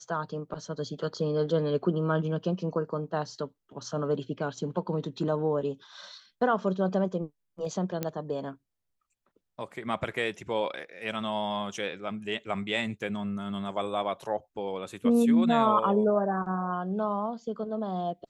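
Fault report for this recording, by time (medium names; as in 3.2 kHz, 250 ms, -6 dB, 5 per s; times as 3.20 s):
8.03 s: pop -15 dBFS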